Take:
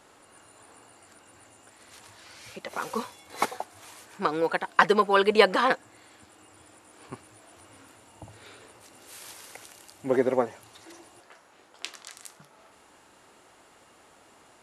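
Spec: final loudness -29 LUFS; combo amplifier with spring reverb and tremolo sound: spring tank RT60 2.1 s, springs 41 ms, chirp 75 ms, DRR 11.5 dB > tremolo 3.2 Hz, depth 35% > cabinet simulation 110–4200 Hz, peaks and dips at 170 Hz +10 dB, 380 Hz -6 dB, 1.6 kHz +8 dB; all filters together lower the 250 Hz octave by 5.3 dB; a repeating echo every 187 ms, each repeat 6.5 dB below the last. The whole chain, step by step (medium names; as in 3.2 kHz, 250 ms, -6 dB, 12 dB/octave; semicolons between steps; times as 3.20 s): peaking EQ 250 Hz -8 dB; feedback delay 187 ms, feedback 47%, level -6.5 dB; spring tank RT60 2.1 s, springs 41 ms, chirp 75 ms, DRR 11.5 dB; tremolo 3.2 Hz, depth 35%; cabinet simulation 110–4200 Hz, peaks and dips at 170 Hz +10 dB, 380 Hz -6 dB, 1.6 kHz +8 dB; trim -3 dB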